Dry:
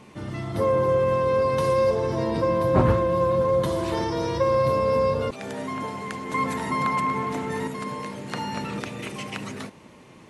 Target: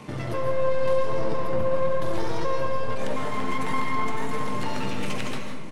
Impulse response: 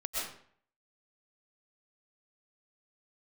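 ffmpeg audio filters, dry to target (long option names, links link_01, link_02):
-filter_complex "[0:a]acrossover=split=170|4400[link_01][link_02][link_03];[link_03]alimiter=level_in=10dB:limit=-24dB:level=0:latency=1:release=244,volume=-10dB[link_04];[link_01][link_02][link_04]amix=inputs=3:normalize=0,acompressor=threshold=-30dB:ratio=8,aeval=exprs='clip(val(0),-1,0.00944)':channel_layout=same,atempo=1.8,flanger=delay=6.5:depth=2.3:regen=73:speed=1.6:shape=sinusoidal,asplit=2[link_05][link_06];[1:a]atrim=start_sample=2205,asetrate=37485,aresample=44100[link_07];[link_06][link_07]afir=irnorm=-1:irlink=0,volume=-4.5dB[link_08];[link_05][link_08]amix=inputs=2:normalize=0,volume=7dB"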